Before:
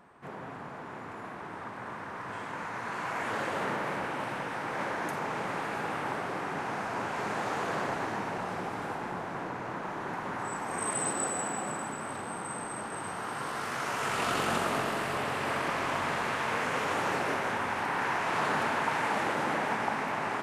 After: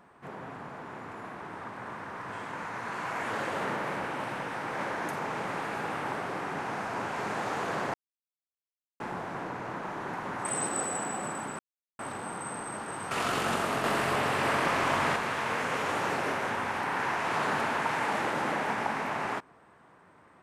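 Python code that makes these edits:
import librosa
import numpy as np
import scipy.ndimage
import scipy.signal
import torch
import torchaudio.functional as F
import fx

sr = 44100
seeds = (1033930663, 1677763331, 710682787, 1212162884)

y = fx.edit(x, sr, fx.silence(start_s=7.94, length_s=1.06),
    fx.cut(start_s=10.45, length_s=0.44),
    fx.insert_silence(at_s=12.03, length_s=0.4),
    fx.cut(start_s=13.15, length_s=0.98),
    fx.clip_gain(start_s=14.86, length_s=1.32, db=4.0), tone=tone)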